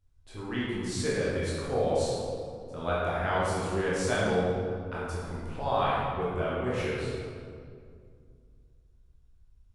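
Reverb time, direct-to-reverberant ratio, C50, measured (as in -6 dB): 2.2 s, -8.0 dB, -3.0 dB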